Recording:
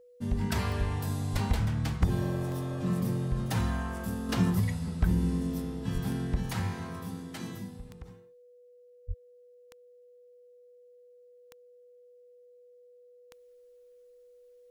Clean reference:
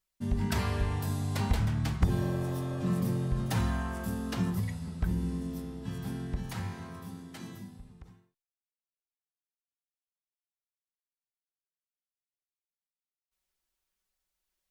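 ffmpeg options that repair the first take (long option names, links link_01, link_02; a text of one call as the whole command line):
ffmpeg -i in.wav -filter_complex "[0:a]adeclick=threshold=4,bandreject=frequency=490:width=30,asplit=3[link_01][link_02][link_03];[link_01]afade=type=out:start_time=1.32:duration=0.02[link_04];[link_02]highpass=frequency=140:width=0.5412,highpass=frequency=140:width=1.3066,afade=type=in:start_time=1.32:duration=0.02,afade=type=out:start_time=1.44:duration=0.02[link_05];[link_03]afade=type=in:start_time=1.44:duration=0.02[link_06];[link_04][link_05][link_06]amix=inputs=3:normalize=0,asplit=3[link_07][link_08][link_09];[link_07]afade=type=out:start_time=5.93:duration=0.02[link_10];[link_08]highpass=frequency=140:width=0.5412,highpass=frequency=140:width=1.3066,afade=type=in:start_time=5.93:duration=0.02,afade=type=out:start_time=6.05:duration=0.02[link_11];[link_09]afade=type=in:start_time=6.05:duration=0.02[link_12];[link_10][link_11][link_12]amix=inputs=3:normalize=0,asplit=3[link_13][link_14][link_15];[link_13]afade=type=out:start_time=9.07:duration=0.02[link_16];[link_14]highpass=frequency=140:width=0.5412,highpass=frequency=140:width=1.3066,afade=type=in:start_time=9.07:duration=0.02,afade=type=out:start_time=9.19:duration=0.02[link_17];[link_15]afade=type=in:start_time=9.19:duration=0.02[link_18];[link_16][link_17][link_18]amix=inputs=3:normalize=0,asetnsamples=nb_out_samples=441:pad=0,asendcmd='4.29 volume volume -4.5dB',volume=0dB" out.wav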